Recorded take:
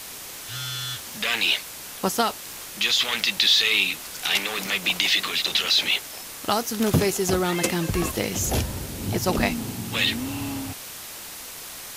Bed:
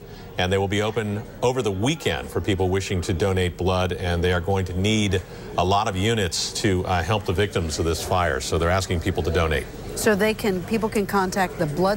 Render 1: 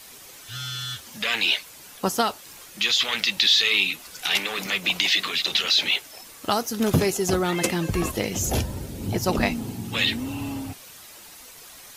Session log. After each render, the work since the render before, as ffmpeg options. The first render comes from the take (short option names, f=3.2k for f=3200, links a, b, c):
-af "afftdn=nr=9:nf=-38"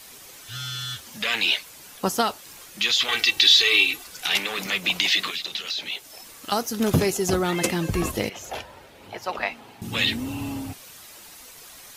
-filter_complex "[0:a]asettb=1/sr,asplit=3[a][b][c];[a]atrim=end=3.084[d];[b]atrim=start=3.08:end=4.04,asetpts=PTS-STARTPTS,afade=t=in:d=0.004:c=qsin,afade=t=out:st=0.956:d=0.004:c=qsin,aecho=1:1:2.6:0.9,atrim=end_sample=42336[e];[c]atrim=start=4.036[f];[d][e]acrossfade=d=0.004:c1=hsin:c2=qsin[g];[g][f]acrossfade=d=0.004:c1=qsin:c2=hsin,asettb=1/sr,asplit=3[h][i][j];[h]atrim=end=5.304[k];[i]atrim=start=5.3:end=6.52,asetpts=PTS-STARTPTS,afade=t=in:d=0.004:c=qsin,afade=t=out:st=1.216:d=0.004:c=qsin,acrossover=split=1300|3100[l][m][n];[l]acompressor=threshold=-45dB:ratio=4[o];[m]acompressor=threshold=-39dB:ratio=4[p];[n]acompressor=threshold=-31dB:ratio=4[q];[o][p][q]amix=inputs=3:normalize=0[r];[j]atrim=start=6.516[s];[k][r]acrossfade=d=0.004:c1=hsin:c2=qsin[t];[t][s]acrossfade=d=0.004:c1=qsin:c2=hsin,asettb=1/sr,asplit=3[u][v][w];[u]atrim=end=8.294[x];[v]atrim=start=8.29:end=9.82,asetpts=PTS-STARTPTS,afade=t=in:d=0.004:c=qsin,afade=t=out:st=1.526:d=0.004:c=qsin,acrossover=split=560 3600:gain=0.0708 1 0.158[y][z][aa];[y][z][aa]amix=inputs=3:normalize=0[ab];[w]atrim=start=9.816[ac];[x][ab]acrossfade=d=0.004:c1=hsin:c2=qsin[ad];[ad][ac]acrossfade=d=0.004:c1=qsin:c2=hsin"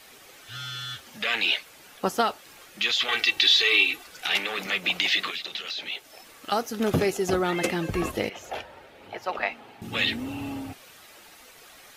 -af "bass=f=250:g=-6,treble=f=4k:g=-9,bandreject=f=1k:w=11"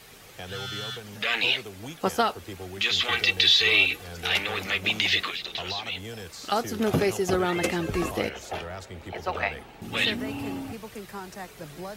-filter_complex "[1:a]volume=-17.5dB[a];[0:a][a]amix=inputs=2:normalize=0"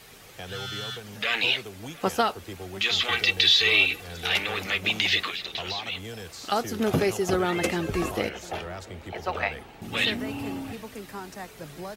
-filter_complex "[0:a]asplit=2[a][b];[b]adelay=699.7,volume=-21dB,highshelf=f=4k:g=-15.7[c];[a][c]amix=inputs=2:normalize=0"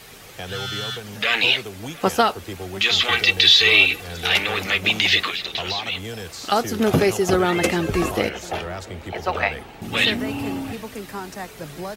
-af "volume=6dB,alimiter=limit=-1dB:level=0:latency=1"